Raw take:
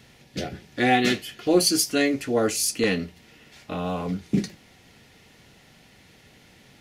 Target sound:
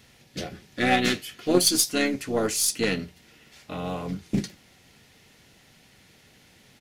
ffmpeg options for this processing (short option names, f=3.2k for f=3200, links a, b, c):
-filter_complex "[0:a]aeval=exprs='0.447*(cos(1*acos(clip(val(0)/0.447,-1,1)))-cos(1*PI/2))+0.0562*(cos(3*acos(clip(val(0)/0.447,-1,1)))-cos(3*PI/2))+0.00891*(cos(6*acos(clip(val(0)/0.447,-1,1)))-cos(6*PI/2))':c=same,asplit=2[a][b];[b]asetrate=33038,aresample=44100,atempo=1.33484,volume=-10dB[c];[a][c]amix=inputs=2:normalize=0,highshelf=f=4.1k:g=5.5"